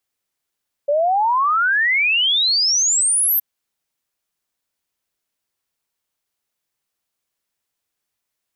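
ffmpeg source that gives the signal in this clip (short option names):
-f lavfi -i "aevalsrc='0.2*clip(min(t,2.52-t)/0.01,0,1)*sin(2*PI*560*2.52/log(13000/560)*(exp(log(13000/560)*t/2.52)-1))':d=2.52:s=44100"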